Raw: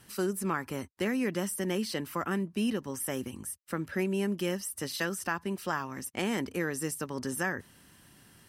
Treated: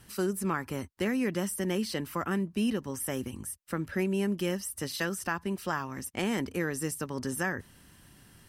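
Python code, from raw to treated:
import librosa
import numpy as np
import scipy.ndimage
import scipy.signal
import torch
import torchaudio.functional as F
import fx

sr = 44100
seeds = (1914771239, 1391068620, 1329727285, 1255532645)

y = fx.low_shelf(x, sr, hz=75.0, db=12.0)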